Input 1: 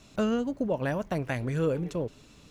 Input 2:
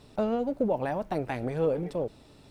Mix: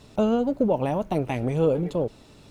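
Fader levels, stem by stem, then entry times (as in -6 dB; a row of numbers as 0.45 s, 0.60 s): -3.5 dB, +3.0 dB; 0.00 s, 0.00 s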